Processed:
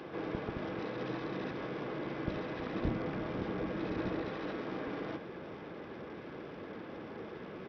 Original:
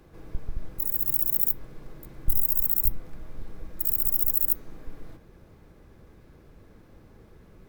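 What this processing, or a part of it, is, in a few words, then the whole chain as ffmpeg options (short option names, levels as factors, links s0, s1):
Bluetooth headset: -filter_complex "[0:a]asettb=1/sr,asplit=3[s0][s1][s2];[s0]atrim=end=2.724[s3];[s1]atrim=start=2.72:end=4.21,asetpts=PTS-STARTPTS,afade=t=in:d=0.004:c=qsin,afade=t=out:st=1.486:d=0.004:c=qsin,lowshelf=f=250:g=7[s4];[s2]atrim=start=4.206[s5];[s3][s4]acrossfade=d=0.004:c1=hsin:c2=qsin[s6];[s6][s5]acrossfade=d=0.004:c1=qsin:c2=hsin,highpass=250,aresample=8000,aresample=44100,volume=4.47" -ar 44100 -c:a sbc -b:a 64k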